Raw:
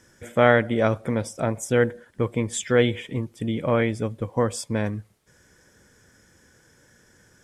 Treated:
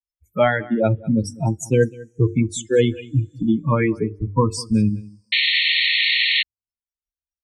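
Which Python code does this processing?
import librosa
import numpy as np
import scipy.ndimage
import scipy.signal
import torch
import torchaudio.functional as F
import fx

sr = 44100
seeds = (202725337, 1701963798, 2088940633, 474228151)

y = fx.bin_expand(x, sr, power=3.0)
y = scipy.signal.sosfilt(scipy.signal.butter(2, 8100.0, 'lowpass', fs=sr, output='sos'), y)
y = fx.low_shelf(y, sr, hz=500.0, db=7.5)
y = fx.hum_notches(y, sr, base_hz=50, count=9)
y = fx.rev_double_slope(y, sr, seeds[0], early_s=0.22, late_s=1.8, knee_db=-18, drr_db=19.5)
y = fx.rider(y, sr, range_db=4, speed_s=0.5)
y = fx.noise_reduce_blind(y, sr, reduce_db=17)
y = y + 10.0 ** (-23.0 / 20.0) * np.pad(y, (int(198 * sr / 1000.0), 0))[:len(y)]
y = fx.spec_paint(y, sr, seeds[1], shape='noise', start_s=5.32, length_s=1.11, low_hz=1800.0, high_hz=4400.0, level_db=-24.0)
y = fx.band_squash(y, sr, depth_pct=40)
y = y * 10.0 ** (6.0 / 20.0)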